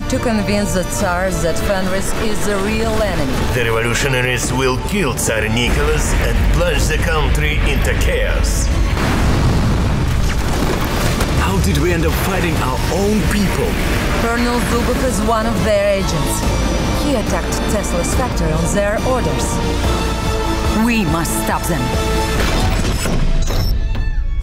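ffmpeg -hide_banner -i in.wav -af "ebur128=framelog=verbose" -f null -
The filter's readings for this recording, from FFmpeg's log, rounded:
Integrated loudness:
  I:         -16.8 LUFS
  Threshold: -26.8 LUFS
Loudness range:
  LRA:         1.4 LU
  Threshold: -36.6 LUFS
  LRA low:   -17.4 LUFS
  LRA high:  -16.0 LUFS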